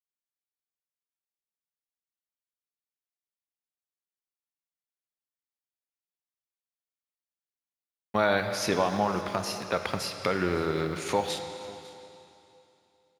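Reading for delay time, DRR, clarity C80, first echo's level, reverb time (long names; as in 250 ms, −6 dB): 551 ms, 6.5 dB, 8.0 dB, −21.0 dB, 2.8 s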